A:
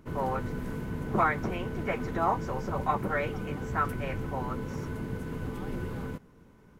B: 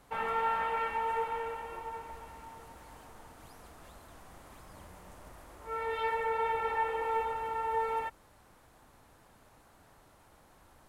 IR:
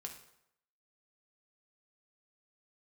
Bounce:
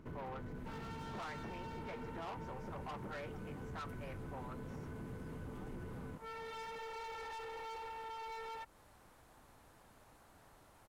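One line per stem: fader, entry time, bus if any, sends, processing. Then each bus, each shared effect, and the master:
-1.5 dB, 0.00 s, no send, treble shelf 4.2 kHz -7.5 dB; saturation -30.5 dBFS, distortion -8 dB
-2.5 dB, 0.55 s, no send, hard clipper -37 dBFS, distortion -6 dB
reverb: none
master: compression 2.5:1, threshold -48 dBFS, peak gain reduction 11 dB

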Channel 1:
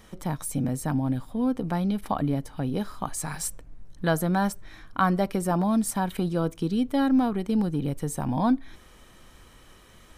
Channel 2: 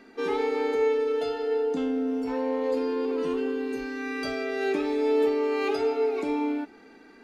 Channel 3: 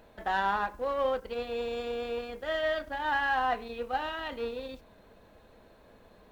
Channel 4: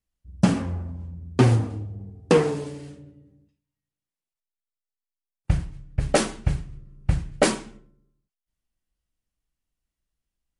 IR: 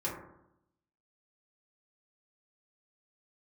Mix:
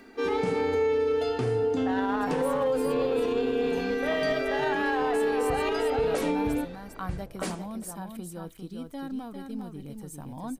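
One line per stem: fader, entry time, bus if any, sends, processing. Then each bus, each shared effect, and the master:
-14.0 dB, 2.00 s, no send, echo send -5.5 dB, treble shelf 8 kHz +8.5 dB
+1.0 dB, 0.00 s, no send, no echo send, none
-4.5 dB, 1.60 s, no send, echo send -7 dB, level-controlled noise filter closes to 710 Hz, open at -29.5 dBFS; peaking EQ 490 Hz +4.5 dB; level rider gain up to 6.5 dB
-12.0 dB, 0.00 s, no send, echo send -24 dB, upward compressor, threshold -34 dBFS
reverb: none
echo: delay 401 ms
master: peak limiter -18.5 dBFS, peak gain reduction 8.5 dB

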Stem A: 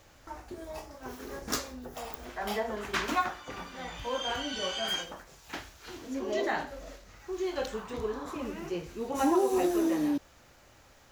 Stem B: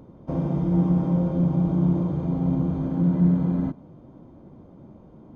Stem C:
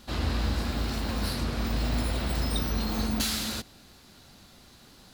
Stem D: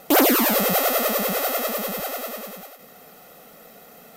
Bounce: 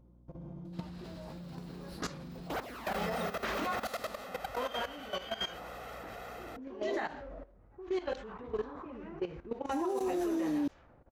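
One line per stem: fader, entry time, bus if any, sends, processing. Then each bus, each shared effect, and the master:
+2.5 dB, 0.50 s, no bus, no send, level-controlled noise filter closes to 490 Hz, open at -25.5 dBFS; treble shelf 4.6 kHz -6 dB
-8.5 dB, 0.00 s, bus A, no send, comb 5.7 ms, depth 42%; tremolo 1.3 Hz, depth 77%
-10.5 dB, 0.65 s, no bus, no send, high-pass 100 Hz
+0.5 dB, 2.40 s, bus A, no send, level rider gain up to 12 dB; band-pass filter 1.2 kHz, Q 0.68
bus A: 0.0 dB, hum 60 Hz, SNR 25 dB; compression 2.5:1, threshold -33 dBFS, peak gain reduction 12.5 dB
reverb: none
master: level held to a coarse grid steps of 15 dB; peak limiter -25.5 dBFS, peak gain reduction 7 dB

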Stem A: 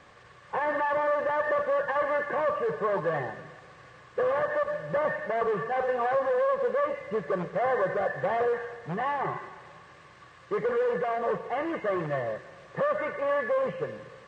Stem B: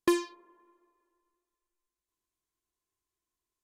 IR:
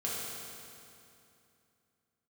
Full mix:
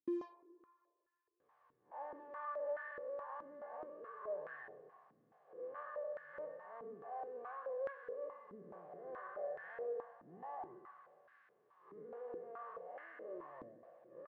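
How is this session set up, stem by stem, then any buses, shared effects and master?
-6.0 dB, 1.40 s, send -14.5 dB, spectral blur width 135 ms; flange 0.32 Hz, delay 0.6 ms, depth 7.6 ms, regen +52%
+3.0 dB, 0.00 s, no send, none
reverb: on, RT60 2.7 s, pre-delay 3 ms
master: saturation -27.5 dBFS, distortion -8 dB; step-sequenced band-pass 4.7 Hz 270–1600 Hz

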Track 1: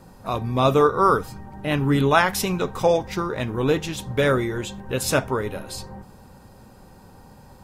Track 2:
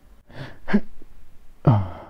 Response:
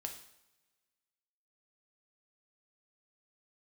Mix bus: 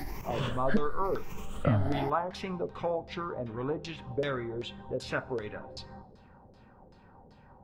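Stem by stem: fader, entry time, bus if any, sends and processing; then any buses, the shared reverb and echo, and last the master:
-11.0 dB, 0.00 s, send -12 dB, LFO low-pass saw down 2.6 Hz 420–4900 Hz
-5.0 dB, 0.00 s, no send, drifting ripple filter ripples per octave 0.76, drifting +0.98 Hz, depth 16 dB; level flattener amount 50%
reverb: on, pre-delay 3 ms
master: compression 1.5:1, threshold -36 dBFS, peak gain reduction 8.5 dB

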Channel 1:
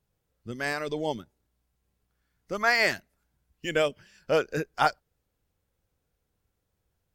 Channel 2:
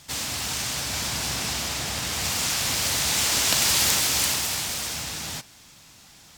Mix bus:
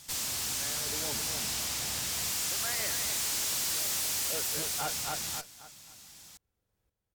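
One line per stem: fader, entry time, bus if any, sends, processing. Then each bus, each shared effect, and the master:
+1.5 dB, 0.00 s, no send, echo send -6.5 dB, sawtooth tremolo in dB swelling 0.58 Hz, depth 20 dB
-4.5 dB, 0.00 s, no send, no echo send, treble shelf 5.2 kHz +11 dB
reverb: none
echo: feedback delay 266 ms, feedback 30%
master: valve stage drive 30 dB, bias 0.55

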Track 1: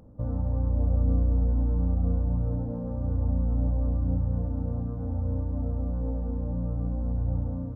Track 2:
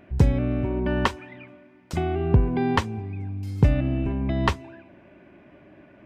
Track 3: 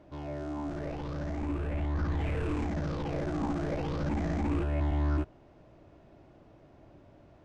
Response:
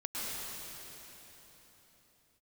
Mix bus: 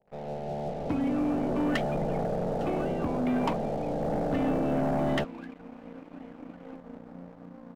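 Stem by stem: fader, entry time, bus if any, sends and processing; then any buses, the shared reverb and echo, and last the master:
-18.0 dB, 0.60 s, no send, steep high-pass 180 Hz 48 dB/octave; band-stop 600 Hz, Q 18
-5.0 dB, 0.70 s, no send, peaking EQ 1.2 kHz +9.5 dB 0.59 oct; talking filter i-u 2.7 Hz
-4.5 dB, 0.00 s, no send, spectral peaks clipped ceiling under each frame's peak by 22 dB; steep low-pass 880 Hz 72 dB/octave; static phaser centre 310 Hz, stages 6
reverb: none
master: treble shelf 2.2 kHz +3.5 dB; waveshaping leveller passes 3

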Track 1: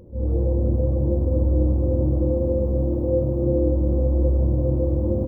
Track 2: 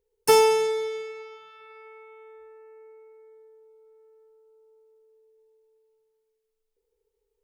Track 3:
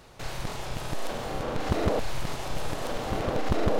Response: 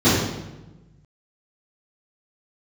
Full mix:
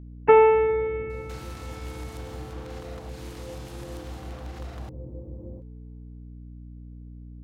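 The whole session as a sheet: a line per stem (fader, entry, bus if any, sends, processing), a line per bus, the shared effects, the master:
-20.0 dB, 0.35 s, no send, none
+2.5 dB, 0.00 s, no send, steep low-pass 2.5 kHz 48 dB/octave; hum 60 Hz, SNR 14 dB
-6.5 dB, 1.10 s, no send, elliptic high-pass 690 Hz; treble shelf 4.6 kHz +5.5 dB; compression, threshold -38 dBFS, peak gain reduction 8.5 dB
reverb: none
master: none

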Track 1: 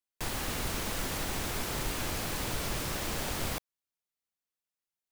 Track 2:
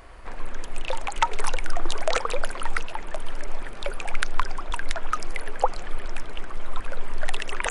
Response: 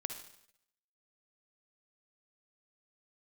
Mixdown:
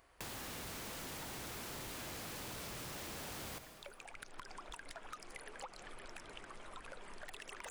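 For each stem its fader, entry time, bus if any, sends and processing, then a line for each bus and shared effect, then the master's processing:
-1.0 dB, 0.00 s, send -3 dB, none
4.11 s -19 dB -> 4.53 s -11 dB, 0.00 s, no send, treble shelf 3.6 kHz +7 dB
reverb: on, RT60 0.75 s, pre-delay 49 ms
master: high-pass 94 Hz 6 dB/octave; saturation -32.5 dBFS, distortion -10 dB; compression 5:1, threshold -46 dBFS, peak gain reduction 10 dB

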